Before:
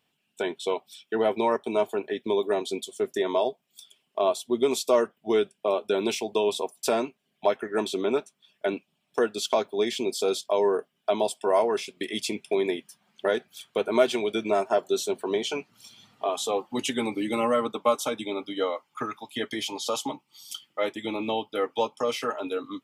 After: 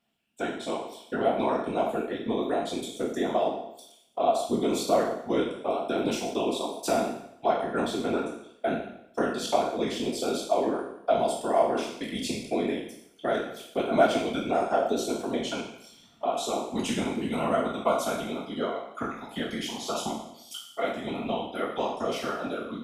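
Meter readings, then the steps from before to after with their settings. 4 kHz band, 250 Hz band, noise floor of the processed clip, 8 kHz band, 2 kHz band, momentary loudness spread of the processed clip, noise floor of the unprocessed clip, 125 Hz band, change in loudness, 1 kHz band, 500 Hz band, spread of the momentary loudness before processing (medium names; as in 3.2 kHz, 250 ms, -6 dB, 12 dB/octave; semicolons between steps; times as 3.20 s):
-3.0 dB, +1.5 dB, -55 dBFS, -2.5 dB, -1.5 dB, 9 LU, -76 dBFS, +5.5 dB, -1.5 dB, +1.5 dB, -2.5 dB, 9 LU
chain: spectral sustain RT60 0.75 s; whisper effect; small resonant body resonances 230/680/1400 Hz, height 9 dB, ringing for 40 ms; trim -6.5 dB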